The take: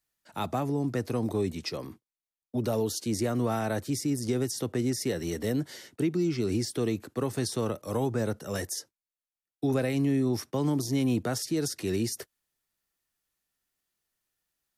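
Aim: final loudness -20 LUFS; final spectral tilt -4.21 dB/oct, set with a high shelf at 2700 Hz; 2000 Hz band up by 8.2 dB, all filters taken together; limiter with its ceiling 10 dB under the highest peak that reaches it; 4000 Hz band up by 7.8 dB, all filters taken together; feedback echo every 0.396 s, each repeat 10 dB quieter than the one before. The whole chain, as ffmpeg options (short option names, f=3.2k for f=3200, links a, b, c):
-af "equalizer=f=2k:t=o:g=7.5,highshelf=f=2.7k:g=3,equalizer=f=4k:t=o:g=6,alimiter=limit=-23dB:level=0:latency=1,aecho=1:1:396|792|1188|1584:0.316|0.101|0.0324|0.0104,volume=12.5dB"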